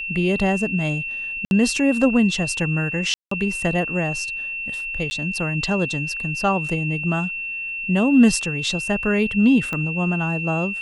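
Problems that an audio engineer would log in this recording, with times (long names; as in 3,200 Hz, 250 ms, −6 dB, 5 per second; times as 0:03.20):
whistle 2,700 Hz −26 dBFS
0:01.45–0:01.51: drop-out 61 ms
0:03.14–0:03.31: drop-out 174 ms
0:05.10–0:05.11: drop-out 10 ms
0:09.73: click −14 dBFS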